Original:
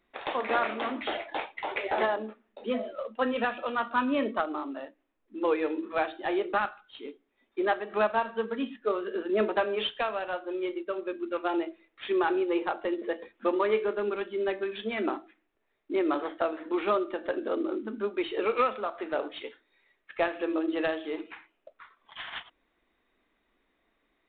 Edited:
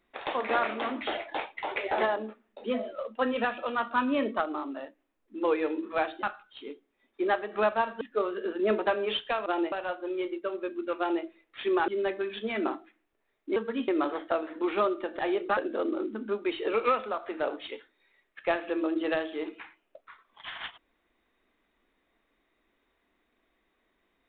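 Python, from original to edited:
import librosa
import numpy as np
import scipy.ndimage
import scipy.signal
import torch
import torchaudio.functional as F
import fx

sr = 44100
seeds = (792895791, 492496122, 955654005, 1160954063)

y = fx.edit(x, sr, fx.move(start_s=6.23, length_s=0.38, to_s=17.29),
    fx.move(start_s=8.39, length_s=0.32, to_s=15.98),
    fx.duplicate(start_s=11.42, length_s=0.26, to_s=10.16),
    fx.cut(start_s=12.32, length_s=1.98), tone=tone)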